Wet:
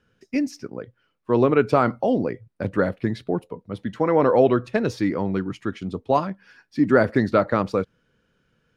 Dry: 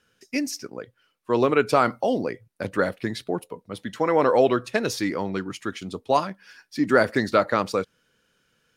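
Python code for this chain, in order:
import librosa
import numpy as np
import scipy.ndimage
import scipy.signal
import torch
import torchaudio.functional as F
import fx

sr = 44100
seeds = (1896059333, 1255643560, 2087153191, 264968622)

y = fx.lowpass(x, sr, hz=2000.0, slope=6)
y = fx.low_shelf(y, sr, hz=260.0, db=8.5)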